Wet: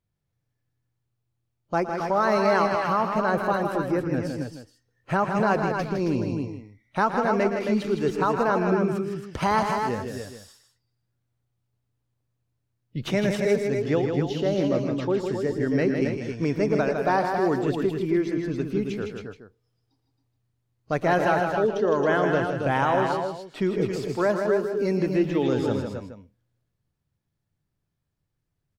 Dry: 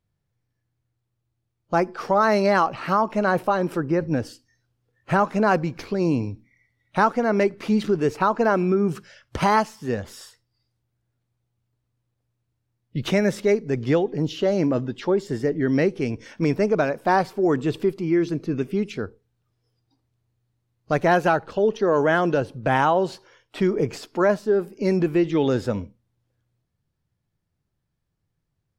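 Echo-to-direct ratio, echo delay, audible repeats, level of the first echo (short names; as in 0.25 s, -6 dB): -2.0 dB, 0.115 s, 4, -13.0 dB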